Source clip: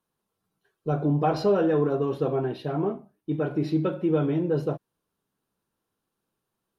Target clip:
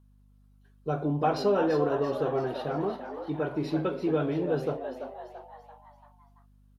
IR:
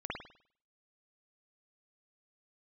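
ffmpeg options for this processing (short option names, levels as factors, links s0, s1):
-filter_complex "[0:a]lowshelf=f=390:g=-7,asplit=6[s0][s1][s2][s3][s4][s5];[s1]adelay=338,afreqshift=110,volume=0.355[s6];[s2]adelay=676,afreqshift=220,volume=0.17[s7];[s3]adelay=1014,afreqshift=330,volume=0.0813[s8];[s4]adelay=1352,afreqshift=440,volume=0.0394[s9];[s5]adelay=1690,afreqshift=550,volume=0.0188[s10];[s0][s6][s7][s8][s9][s10]amix=inputs=6:normalize=0,aeval=exprs='val(0)+0.00126*(sin(2*PI*50*n/s)+sin(2*PI*2*50*n/s)/2+sin(2*PI*3*50*n/s)/3+sin(2*PI*4*50*n/s)/4+sin(2*PI*5*50*n/s)/5)':c=same"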